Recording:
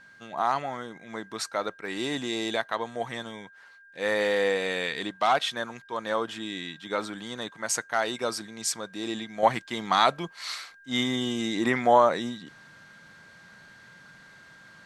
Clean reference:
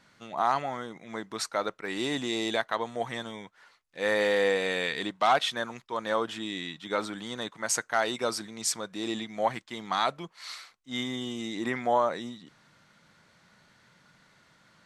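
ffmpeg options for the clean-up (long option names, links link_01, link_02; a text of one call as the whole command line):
ffmpeg -i in.wav -af "bandreject=frequency=1600:width=30,asetnsamples=nb_out_samples=441:pad=0,asendcmd='9.43 volume volume -6dB',volume=0dB" out.wav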